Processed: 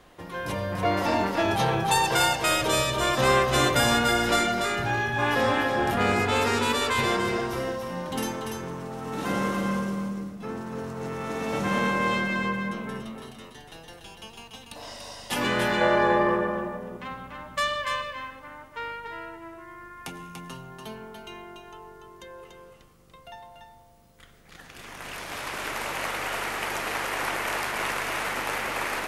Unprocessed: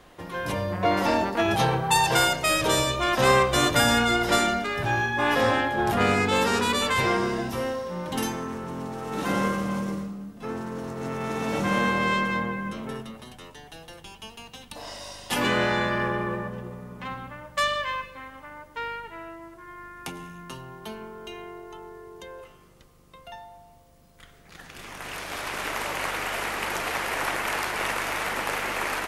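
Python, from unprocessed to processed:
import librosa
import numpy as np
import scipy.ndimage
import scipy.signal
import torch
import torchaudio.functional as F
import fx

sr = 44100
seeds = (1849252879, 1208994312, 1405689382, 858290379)

p1 = fx.peak_eq(x, sr, hz=640.0, db=10.0, octaves=1.8, at=(15.81, 16.68))
p2 = p1 + fx.echo_single(p1, sr, ms=289, db=-5.5, dry=0)
y = F.gain(torch.from_numpy(p2), -2.0).numpy()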